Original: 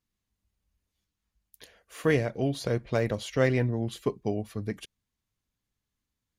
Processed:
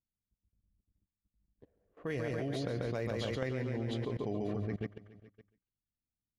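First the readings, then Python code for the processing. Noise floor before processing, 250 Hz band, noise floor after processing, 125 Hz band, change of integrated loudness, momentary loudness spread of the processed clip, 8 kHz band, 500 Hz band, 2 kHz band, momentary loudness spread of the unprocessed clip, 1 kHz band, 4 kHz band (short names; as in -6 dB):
under -85 dBFS, -7.0 dB, under -85 dBFS, -7.0 dB, -8.0 dB, 5 LU, -12.0 dB, -8.5 dB, -9.5 dB, 11 LU, -8.0 dB, -6.0 dB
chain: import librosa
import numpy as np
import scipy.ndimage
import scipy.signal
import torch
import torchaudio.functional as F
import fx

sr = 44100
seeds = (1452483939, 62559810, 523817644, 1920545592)

y = fx.env_lowpass(x, sr, base_hz=310.0, full_db=-24.0)
y = fx.echo_feedback(y, sr, ms=140, feedback_pct=50, wet_db=-6.0)
y = fx.level_steps(y, sr, step_db=20)
y = y * librosa.db_to_amplitude(4.5)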